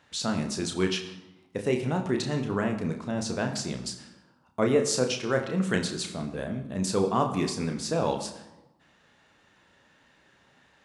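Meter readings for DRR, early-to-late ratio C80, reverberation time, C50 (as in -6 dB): 4.0 dB, 11.5 dB, 1.0 s, 9.5 dB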